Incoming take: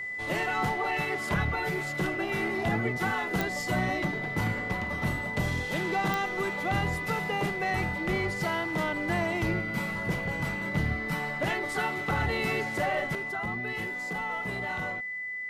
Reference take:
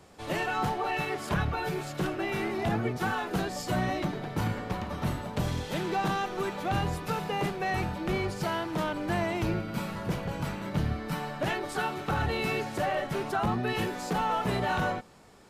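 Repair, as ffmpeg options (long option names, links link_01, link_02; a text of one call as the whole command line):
ffmpeg -i in.wav -af "adeclick=threshold=4,bandreject=frequency=2000:width=30,asetnsamples=nb_out_samples=441:pad=0,asendcmd='13.15 volume volume 7.5dB',volume=0dB" out.wav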